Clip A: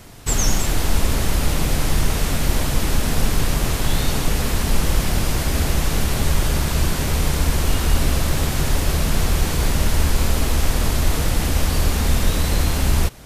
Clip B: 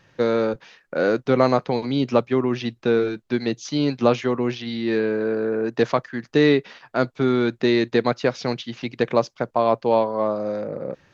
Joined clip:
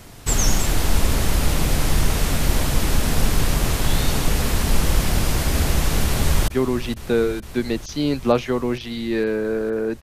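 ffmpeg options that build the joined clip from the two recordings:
ffmpeg -i cue0.wav -i cue1.wav -filter_complex "[0:a]apad=whole_dur=10.02,atrim=end=10.02,atrim=end=6.482[link_01];[1:a]atrim=start=2.238:end=5.78[link_02];[link_01][link_02]acrossfade=duration=0.004:curve1=hsin:curve2=hsin,asplit=2[link_03][link_04];[link_04]afade=type=in:start_time=6.04:duration=0.01,afade=type=out:start_time=6.48:duration=0.01,aecho=0:1:460|920|1380|1840|2300|2760|3220|3680|4140|4600|5060|5520:0.223872|0.179098|0.143278|0.114623|0.091698|0.0733584|0.0586867|0.0469494|0.0375595|0.0300476|0.0240381|0.0192305[link_05];[link_03][link_05]amix=inputs=2:normalize=0" out.wav

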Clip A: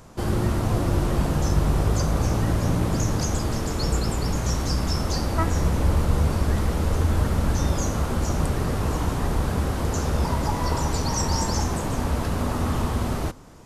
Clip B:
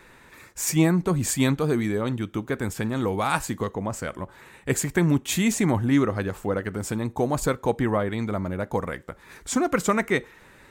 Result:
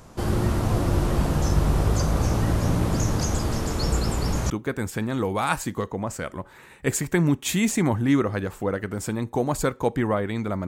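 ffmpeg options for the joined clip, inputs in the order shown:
ffmpeg -i cue0.wav -i cue1.wav -filter_complex "[0:a]apad=whole_dur=10.67,atrim=end=10.67,atrim=end=4.502[link_01];[1:a]atrim=start=2.328:end=8.5[link_02];[link_01][link_02]acrossfade=duration=0.004:curve1=hsin:curve2=hsin" out.wav

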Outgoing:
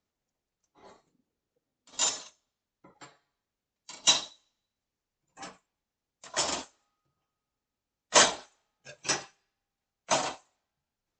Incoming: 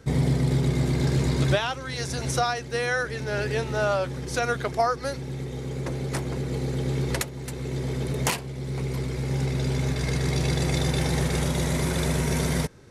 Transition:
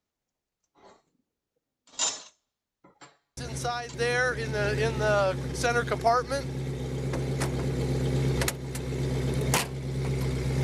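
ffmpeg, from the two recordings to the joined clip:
ffmpeg -i cue0.wav -i cue1.wav -filter_complex "[1:a]asplit=2[link_01][link_02];[0:a]apad=whole_dur=10.63,atrim=end=10.63,atrim=end=3.942[link_03];[link_02]atrim=start=2.668:end=9.36[link_04];[link_01]atrim=start=2.1:end=2.67,asetpts=PTS-STARTPTS,volume=-6.5dB,afade=type=in:duration=0.004:curve=hsin,afade=type=out:start_time=0.566:duration=0.004:curve=hsin,adelay=148617S[link_05];[link_03][link_04]acrossfade=duration=0.004:curve1=hsin:curve2=hsin[link_06];[link_06][link_05]amix=inputs=2:normalize=0" out.wav

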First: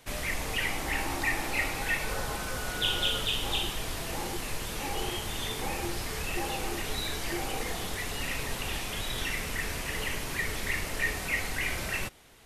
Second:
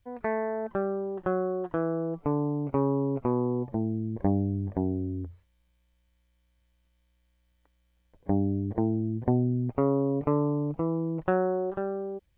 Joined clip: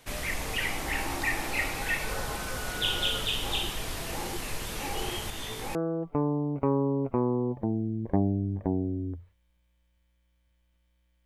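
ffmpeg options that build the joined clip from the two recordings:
ffmpeg -i cue0.wav -i cue1.wav -filter_complex "[0:a]asettb=1/sr,asplit=3[link_01][link_02][link_03];[link_01]atrim=end=5.304[link_04];[link_02]atrim=start=5.3:end=5.75,asetpts=PTS-STARTPTS,afade=type=in:duration=0.004:curve=qsin,afade=type=out:start_time=0.446:duration=0.004:curve=qsin,flanger=delay=18:depth=6:speed=0.2[link_05];[link_03]atrim=start=5.746[link_06];[link_04][link_05]acrossfade=duration=0.004:curve1=hsin:curve2=qsin[link_07];[link_07][link_06]acrossfade=duration=0.004:curve1=qsin:curve2=hsin,apad=whole_dur=11.25,atrim=end=11.25,atrim=end=5.752[link_08];[1:a]atrim=start=1.858:end=7.36[link_09];[link_08][link_09]acrossfade=duration=0.004:curve1=hsin:curve2=hsin" out.wav

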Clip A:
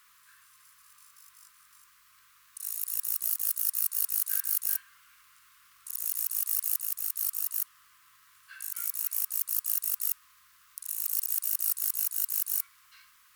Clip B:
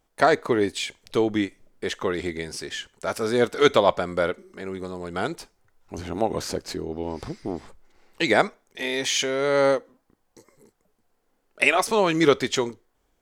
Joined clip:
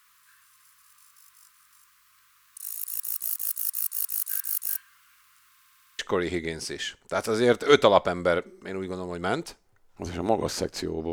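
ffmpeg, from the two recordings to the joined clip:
ffmpeg -i cue0.wav -i cue1.wav -filter_complex "[0:a]apad=whole_dur=11.12,atrim=end=11.12,asplit=7[link_01][link_02][link_03][link_04][link_05][link_06][link_07];[link_01]atrim=end=5.572[link_08];[link_02]atrim=start=5.498:end=5.572[link_09];[link_03]atrim=start=5.498:end=5.572[link_10];[link_04]atrim=start=5.498:end=5.572[link_11];[link_05]atrim=start=5.498:end=5.572[link_12];[link_06]atrim=start=5.498:end=5.572[link_13];[link_07]atrim=start=5.498:end=5.572[link_14];[1:a]atrim=start=1.908:end=7.04[link_15];[link_08][link_09]acrossfade=duration=0.004:curve1=hsin:curve2=hsin[link_16];[link_16][link_10]acrossfade=duration=0.004:curve1=hsin:curve2=hsin[link_17];[link_17][link_11]acrossfade=duration=0.004:curve1=hsin:curve2=hsin[link_18];[link_18][link_12]acrossfade=duration=0.004:curve1=hsin:curve2=hsin[link_19];[link_19][link_13]acrossfade=duration=0.004:curve1=hsin:curve2=hsin[link_20];[link_20][link_14]acrossfade=duration=0.004:curve1=hsin:curve2=hsin[link_21];[link_21][link_15]acrossfade=duration=0.004:curve1=hsin:curve2=hsin" out.wav

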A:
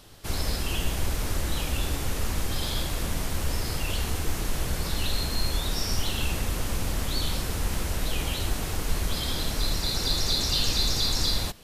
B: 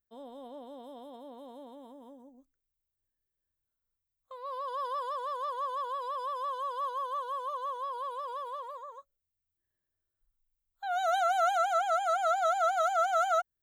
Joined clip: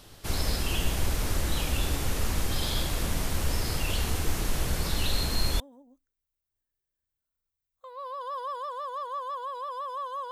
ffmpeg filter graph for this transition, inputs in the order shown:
ffmpeg -i cue0.wav -i cue1.wav -filter_complex "[1:a]asplit=2[link_01][link_02];[0:a]apad=whole_dur=10.31,atrim=end=10.31,atrim=end=5.602[link_03];[link_02]atrim=start=2.068:end=6.78[link_04];[link_01]atrim=start=1.5:end=2.07,asetpts=PTS-STARTPTS,volume=-6dB,afade=type=in:duration=0.004:curve=hsin,afade=type=out:start_time=0.566:duration=0.004:curve=hsin,adelay=5030[link_05];[link_03][link_04]acrossfade=duration=0.004:curve1=hsin:curve2=hsin[link_06];[link_06][link_05]amix=inputs=2:normalize=0" out.wav

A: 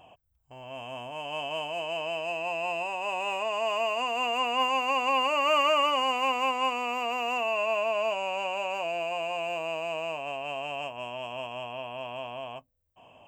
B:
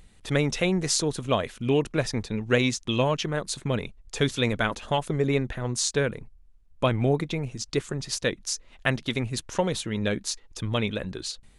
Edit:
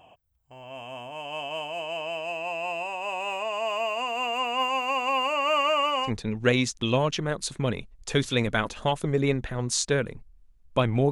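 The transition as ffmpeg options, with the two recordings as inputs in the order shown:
ffmpeg -i cue0.wav -i cue1.wav -filter_complex "[0:a]asettb=1/sr,asplit=3[link_01][link_02][link_03];[link_01]atrim=end=5.334[link_04];[link_02]atrim=start=5.33:end=6.11,asetpts=PTS-STARTPTS,afade=type=in:duration=0.004:curve=qsin,afade=type=out:start_time=0.776:duration=0.004:curve=qsin,highshelf=frequency=9700:gain=-4.5[link_05];[link_03]atrim=start=6.106[link_06];[link_04][link_05]acrossfade=duration=0.004:curve1=hsin:curve2=qsin[link_07];[link_07][link_06]acrossfade=duration=0.004:curve1=qsin:curve2=hsin,apad=whole_dur=11.11,atrim=end=11.11,atrim=end=6.11,asetpts=PTS-STARTPTS[link_08];[1:a]atrim=start=2.09:end=7.17,asetpts=PTS-STARTPTS[link_09];[link_08][link_09]acrossfade=duration=0.08:curve1=tri:curve2=tri" out.wav

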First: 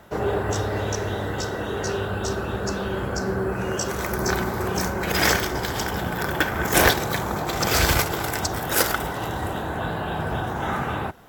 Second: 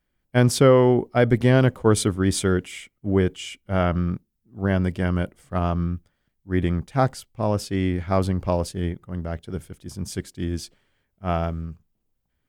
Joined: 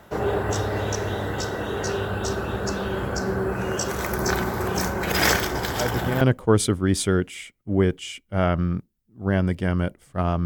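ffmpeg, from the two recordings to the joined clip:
ffmpeg -i cue0.wav -i cue1.wav -filter_complex "[1:a]asplit=2[link_01][link_02];[0:a]apad=whole_dur=10.45,atrim=end=10.45,atrim=end=6.212[link_03];[link_02]atrim=start=1.578:end=5.82[link_04];[link_01]atrim=start=1.06:end=1.58,asetpts=PTS-STARTPTS,volume=-9dB,afade=type=in:duration=0.004:curve=hsin,afade=type=out:start_time=0.516:duration=0.004:curve=hsin,adelay=250929S[link_05];[link_03][link_04]acrossfade=duration=0.004:curve1=hsin:curve2=hsin[link_06];[link_06][link_05]amix=inputs=2:normalize=0" out.wav

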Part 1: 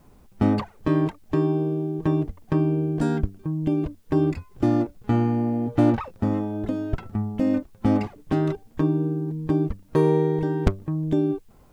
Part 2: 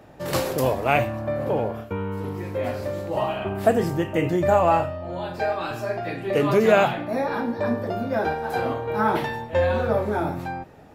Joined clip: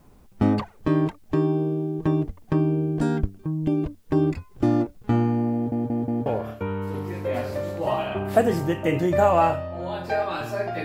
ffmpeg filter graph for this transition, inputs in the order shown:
ffmpeg -i cue0.wav -i cue1.wav -filter_complex "[0:a]apad=whole_dur=10.84,atrim=end=10.84,asplit=4[link_01][link_02][link_03][link_04];[link_01]atrim=end=5.722[link_05];[link_02]atrim=start=5.538:end=5.722[link_06];[link_03]atrim=start=5.538:end=5.722[link_07];[link_04]atrim=start=5.538:end=5.722[link_08];[1:a]atrim=start=1.558:end=6.14[link_09];[link_05][link_06]acrossfade=duration=0.004:curve1=hsin:curve2=hsin[link_10];[link_10][link_07]acrossfade=duration=0.004:curve1=hsin:curve2=hsin[link_11];[link_11][link_08]acrossfade=duration=0.004:curve1=hsin:curve2=hsin[link_12];[link_12][link_09]acrossfade=duration=0.004:curve1=hsin:curve2=hsin" out.wav

